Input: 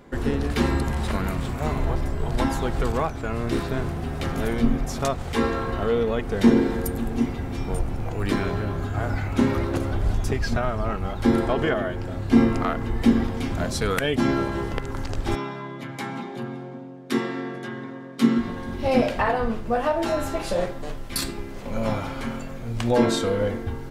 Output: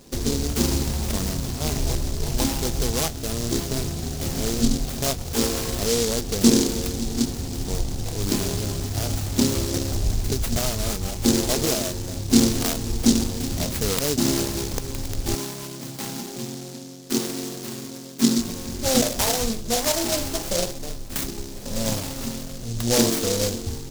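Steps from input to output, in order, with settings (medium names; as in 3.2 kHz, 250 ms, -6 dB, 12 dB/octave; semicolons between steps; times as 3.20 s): delay time shaken by noise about 5.4 kHz, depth 0.22 ms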